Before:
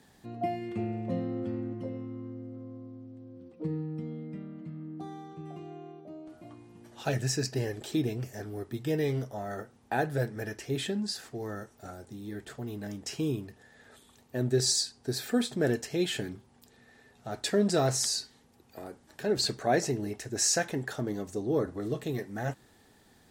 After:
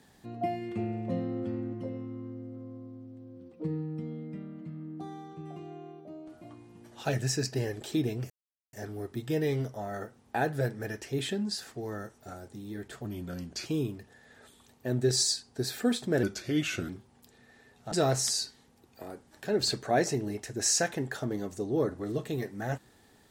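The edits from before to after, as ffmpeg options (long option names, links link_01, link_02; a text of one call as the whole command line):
ffmpeg -i in.wav -filter_complex "[0:a]asplit=7[link_01][link_02][link_03][link_04][link_05][link_06][link_07];[link_01]atrim=end=8.3,asetpts=PTS-STARTPTS,afade=type=out:start_time=8.296:duration=0.004:curve=hsin,apad=pad_dur=0.43[link_08];[link_02]atrim=start=8.3:end=12.624,asetpts=PTS-STARTPTS,afade=type=in:duration=0.004:curve=hsin[link_09];[link_03]atrim=start=12.62:end=13.15,asetpts=PTS-STARTPTS,asetrate=38367,aresample=44100[link_10];[link_04]atrim=start=13.146:end=15.724[link_11];[link_05]atrim=start=15.72:end=16.28,asetpts=PTS-STARTPTS,asetrate=37485,aresample=44100,atrim=end_sample=29054,asetpts=PTS-STARTPTS[link_12];[link_06]atrim=start=16.276:end=17.312[link_13];[link_07]atrim=start=17.678[link_14];[link_08][link_09]concat=n=2:v=0:a=1[link_15];[link_15][link_10]acrossfade=duration=0.004:curve1=hsin:curve2=hsin[link_16];[link_16][link_11]acrossfade=duration=0.004:curve1=hsin:curve2=hsin[link_17];[link_17][link_12]acrossfade=duration=0.004:curve1=hsin:curve2=hsin[link_18];[link_18][link_13]acrossfade=duration=0.004:curve1=hsin:curve2=hsin[link_19];[link_19][link_14]acrossfade=duration=0.004:curve1=hsin:curve2=hsin" out.wav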